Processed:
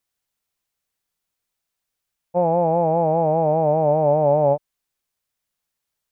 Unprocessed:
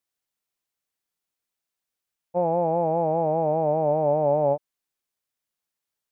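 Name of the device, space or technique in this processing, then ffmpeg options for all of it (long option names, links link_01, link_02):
low shelf boost with a cut just above: -af "lowshelf=frequency=98:gain=7.5,equalizer=frequency=320:width_type=o:width=0.77:gain=-2.5,volume=4.5dB"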